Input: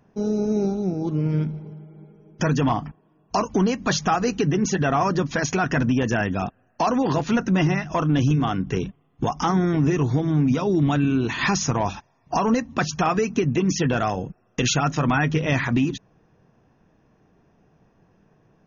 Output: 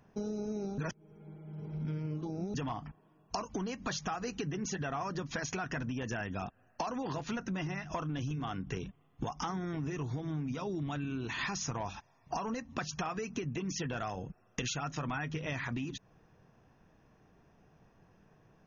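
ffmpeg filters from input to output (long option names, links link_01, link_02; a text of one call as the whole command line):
ffmpeg -i in.wav -filter_complex "[0:a]asplit=3[link_01][link_02][link_03];[link_01]atrim=end=0.782[link_04];[link_02]atrim=start=0.778:end=2.542,asetpts=PTS-STARTPTS,areverse[link_05];[link_03]atrim=start=2.538[link_06];[link_04][link_05]acrossfade=duration=0.004:curve1=hsin:curve2=hsin[link_07];[link_07][link_06]acrossfade=duration=0.004:curve1=hsin:curve2=hsin,equalizer=frequency=280:width_type=o:width=2.5:gain=-4.5,acompressor=threshold=-33dB:ratio=6,volume=-1.5dB" out.wav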